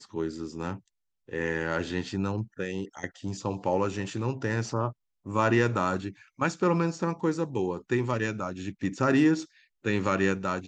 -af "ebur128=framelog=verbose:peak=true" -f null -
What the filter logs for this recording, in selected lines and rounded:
Integrated loudness:
  I:         -29.1 LUFS
  Threshold: -39.3 LUFS
Loudness range:
  LRA:         5.3 LU
  Threshold: -49.3 LUFS
  LRA low:   -33.0 LUFS
  LRA high:  -27.7 LUFS
True peak:
  Peak:      -10.9 dBFS